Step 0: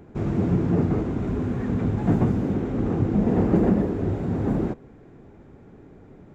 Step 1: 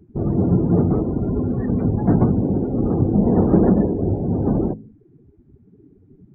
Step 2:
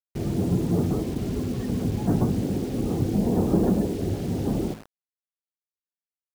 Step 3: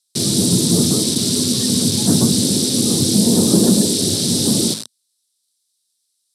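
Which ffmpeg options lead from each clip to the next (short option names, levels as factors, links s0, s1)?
-af "bandreject=f=53.72:t=h:w=4,bandreject=f=107.44:t=h:w=4,bandreject=f=161.16:t=h:w=4,bandreject=f=214.88:t=h:w=4,bandreject=f=268.6:t=h:w=4,afftdn=nr=27:nf=-35,volume=1.78"
-af "acrusher=bits=5:mix=0:aa=0.000001,volume=0.473"
-af "aexciter=amount=10.8:drive=9:freq=3800,highpass=f=110:w=0.5412,highpass=f=110:w=1.3066,equalizer=f=230:t=q:w=4:g=5,equalizer=f=770:t=q:w=4:g=-7,equalizer=f=2400:t=q:w=4:g=7,equalizer=f=3800:t=q:w=4:g=6,equalizer=f=6700:t=q:w=4:g=-9,lowpass=f=9800:w=0.5412,lowpass=f=9800:w=1.3066,volume=2"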